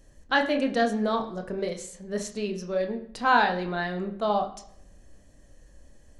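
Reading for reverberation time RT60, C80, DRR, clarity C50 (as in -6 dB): 0.70 s, 13.5 dB, 3.5 dB, 11.5 dB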